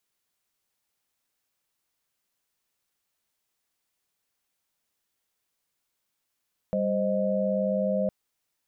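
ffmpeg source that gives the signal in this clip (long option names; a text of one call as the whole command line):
ffmpeg -f lavfi -i "aevalsrc='0.0422*(sin(2*PI*196*t)+sin(2*PI*523.25*t)+sin(2*PI*622.25*t))':duration=1.36:sample_rate=44100" out.wav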